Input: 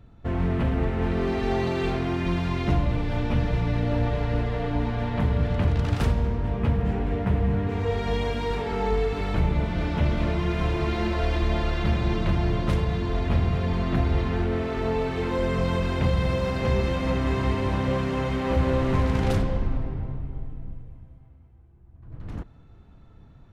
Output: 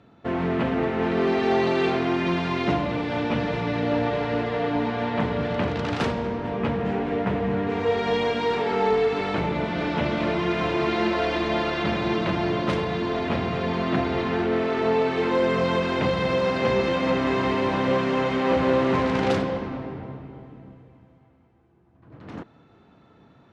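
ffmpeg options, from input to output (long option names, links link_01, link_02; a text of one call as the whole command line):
ffmpeg -i in.wav -af "highpass=230,lowpass=5400,volume=5.5dB" out.wav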